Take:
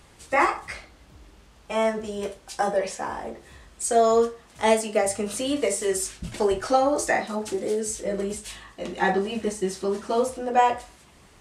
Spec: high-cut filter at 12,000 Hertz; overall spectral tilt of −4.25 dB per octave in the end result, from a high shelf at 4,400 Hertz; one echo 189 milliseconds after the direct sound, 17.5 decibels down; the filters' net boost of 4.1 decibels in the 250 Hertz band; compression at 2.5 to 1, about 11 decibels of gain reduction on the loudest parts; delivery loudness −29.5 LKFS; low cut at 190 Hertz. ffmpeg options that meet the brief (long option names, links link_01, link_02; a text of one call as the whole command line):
ffmpeg -i in.wav -af "highpass=190,lowpass=12000,equalizer=frequency=250:width_type=o:gain=7,highshelf=frequency=4400:gain=-6.5,acompressor=threshold=-31dB:ratio=2.5,aecho=1:1:189:0.133,volume=3dB" out.wav